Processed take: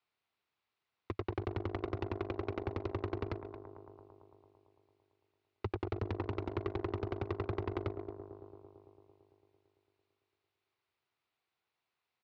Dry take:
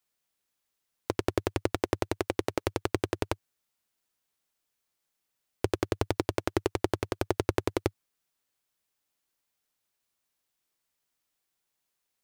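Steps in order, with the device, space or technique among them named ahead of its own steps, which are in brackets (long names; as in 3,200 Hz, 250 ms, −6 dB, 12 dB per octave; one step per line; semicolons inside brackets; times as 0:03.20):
slap from a distant wall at 39 metres, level −22 dB
analogue delay pedal into a guitar amplifier (bucket-brigade delay 112 ms, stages 1,024, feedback 78%, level −17 dB; tube saturation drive 33 dB, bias 0.7; loudspeaker in its box 86–3,700 Hz, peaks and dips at 180 Hz −9 dB, 280 Hz −7 dB, 550 Hz −6 dB, 1,700 Hz −5 dB, 3,200 Hz −5 dB)
level +7 dB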